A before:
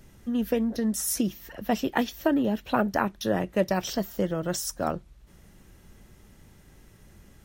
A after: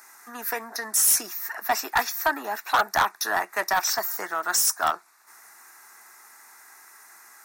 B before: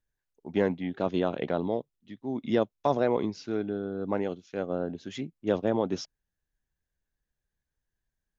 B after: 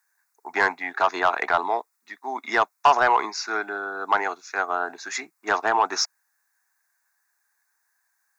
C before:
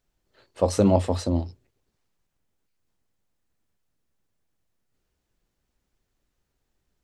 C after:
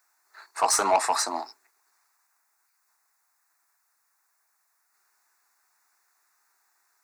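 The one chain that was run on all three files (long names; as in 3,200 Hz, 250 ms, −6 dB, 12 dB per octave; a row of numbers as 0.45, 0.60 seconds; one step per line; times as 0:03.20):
high-pass filter 600 Hz 24 dB per octave
phaser with its sweep stopped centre 1,300 Hz, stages 4
soft clipping −29.5 dBFS
loudness normalisation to −24 LKFS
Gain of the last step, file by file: +15.0, +21.0, +16.0 decibels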